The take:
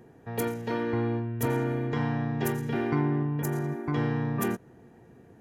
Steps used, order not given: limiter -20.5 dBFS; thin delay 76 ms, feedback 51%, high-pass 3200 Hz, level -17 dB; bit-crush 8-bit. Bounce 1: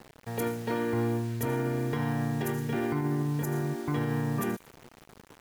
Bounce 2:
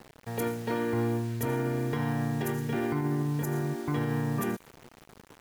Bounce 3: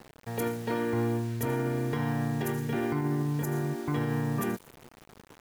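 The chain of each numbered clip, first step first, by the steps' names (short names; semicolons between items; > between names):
bit-crush > thin delay > limiter; bit-crush > limiter > thin delay; thin delay > bit-crush > limiter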